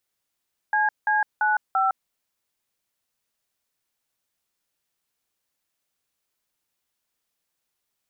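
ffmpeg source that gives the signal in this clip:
ffmpeg -f lavfi -i "aevalsrc='0.0891*clip(min(mod(t,0.34),0.159-mod(t,0.34))/0.002,0,1)*(eq(floor(t/0.34),0)*(sin(2*PI*852*mod(t,0.34))+sin(2*PI*1633*mod(t,0.34)))+eq(floor(t/0.34),1)*(sin(2*PI*852*mod(t,0.34))+sin(2*PI*1633*mod(t,0.34)))+eq(floor(t/0.34),2)*(sin(2*PI*852*mod(t,0.34))+sin(2*PI*1477*mod(t,0.34)))+eq(floor(t/0.34),3)*(sin(2*PI*770*mod(t,0.34))+sin(2*PI*1336*mod(t,0.34))))':duration=1.36:sample_rate=44100" out.wav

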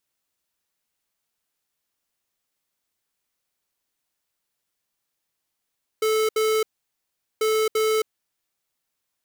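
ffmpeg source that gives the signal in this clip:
ffmpeg -f lavfi -i "aevalsrc='0.0891*(2*lt(mod(436*t,1),0.5)-1)*clip(min(mod(mod(t,1.39),0.34),0.27-mod(mod(t,1.39),0.34))/0.005,0,1)*lt(mod(t,1.39),0.68)':duration=2.78:sample_rate=44100" out.wav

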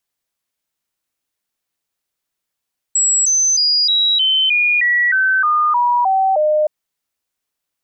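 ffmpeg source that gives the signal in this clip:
ffmpeg -f lavfi -i "aevalsrc='0.266*clip(min(mod(t,0.31),0.31-mod(t,0.31))/0.005,0,1)*sin(2*PI*7740*pow(2,-floor(t/0.31)/3)*mod(t,0.31))':duration=3.72:sample_rate=44100" out.wav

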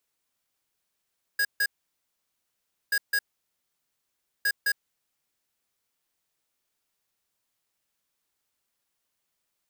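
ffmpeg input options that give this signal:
ffmpeg -f lavfi -i "aevalsrc='0.0631*(2*lt(mod(1650*t,1),0.5)-1)*clip(min(mod(mod(t,1.53),0.21),0.06-mod(mod(t,1.53),0.21))/0.005,0,1)*lt(mod(t,1.53),0.42)':duration=4.59:sample_rate=44100" out.wav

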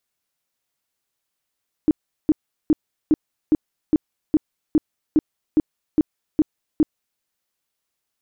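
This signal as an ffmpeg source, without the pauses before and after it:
ffmpeg -f lavfi -i "aevalsrc='0.282*sin(2*PI*308*mod(t,0.41))*lt(mod(t,0.41),9/308)':duration=5.33:sample_rate=44100" out.wav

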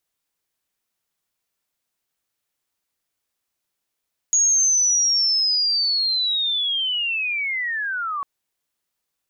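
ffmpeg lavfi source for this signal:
ffmpeg -f lavfi -i "aevalsrc='pow(10,(-14-9.5*t/3.9)/20)*sin(2*PI*(6700*t-5600*t*t/(2*3.9)))':duration=3.9:sample_rate=44100" out.wav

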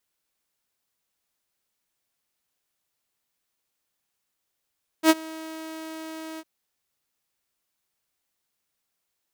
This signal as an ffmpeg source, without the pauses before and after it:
ffmpeg -f lavfi -i "aevalsrc='0.355*(2*mod(319*t,1)-1)':duration=1.405:sample_rate=44100,afade=type=in:duration=0.069,afade=type=out:start_time=0.069:duration=0.037:silence=0.0668,afade=type=out:start_time=1.36:duration=0.045" out.wav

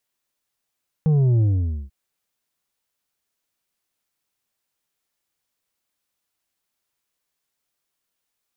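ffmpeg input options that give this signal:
ffmpeg -f lavfi -i "aevalsrc='0.178*clip((0.84-t)/0.49,0,1)*tanh(2*sin(2*PI*160*0.84/log(65/160)*(exp(log(65/160)*t/0.84)-1)))/tanh(2)':duration=0.84:sample_rate=44100" out.wav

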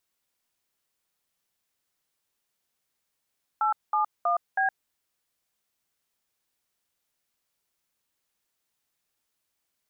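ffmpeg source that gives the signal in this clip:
ffmpeg -f lavfi -i "aevalsrc='0.0631*clip(min(mod(t,0.321),0.116-mod(t,0.321))/0.002,0,1)*(eq(floor(t/0.321),0)*(sin(2*PI*852*mod(t,0.321))+sin(2*PI*1336*mod(t,0.321)))+eq(floor(t/0.321),1)*(sin(2*PI*852*mod(t,0.321))+sin(2*PI*1209*mod(t,0.321)))+eq(floor(t/0.321),2)*(sin(2*PI*697*mod(t,0.321))+sin(2*PI*1209*mod(t,0.321)))+eq(floor(t/0.321),3)*(sin(2*PI*770*mod(t,0.321))+sin(2*PI*1633*mod(t,0.321))))':duration=1.284:sample_rate=44100" out.wav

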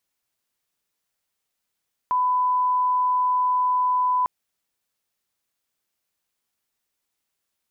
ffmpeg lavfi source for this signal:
ffmpeg -f lavfi -i "sine=frequency=1000:duration=2.15:sample_rate=44100,volume=0.06dB" out.wav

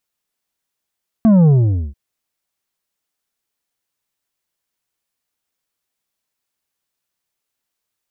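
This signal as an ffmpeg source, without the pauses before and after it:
ffmpeg -f lavfi -i "aevalsrc='0.398*clip((0.69-t)/0.47,0,1)*tanh(2.24*sin(2*PI*230*0.69/log(65/230)*(exp(log(65/230)*t/0.69)-1)))/tanh(2.24)':duration=0.69:sample_rate=44100" out.wav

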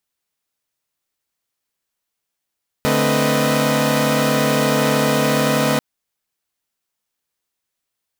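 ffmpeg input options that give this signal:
ffmpeg -f lavfi -i "aevalsrc='0.112*((2*mod(146.83*t,1)-1)+(2*mod(220*t,1)-1)+(2*mod(261.63*t,1)-1)+(2*mod(493.88*t,1)-1)+(2*mod(622.25*t,1)-1))':duration=2.94:sample_rate=44100" out.wav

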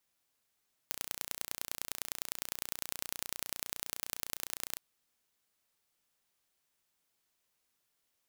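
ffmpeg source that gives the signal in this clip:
ffmpeg -f lavfi -i "aevalsrc='0.447*eq(mod(n,1480),0)*(0.5+0.5*eq(mod(n,4440),0))':duration=3.86:sample_rate=44100" out.wav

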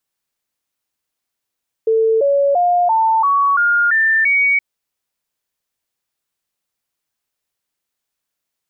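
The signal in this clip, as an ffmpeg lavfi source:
ffmpeg -f lavfi -i "aevalsrc='0.282*clip(min(mod(t,0.34),0.34-mod(t,0.34))/0.005,0,1)*sin(2*PI*446*pow(2,floor(t/0.34)/3)*mod(t,0.34))':duration=2.72:sample_rate=44100" out.wav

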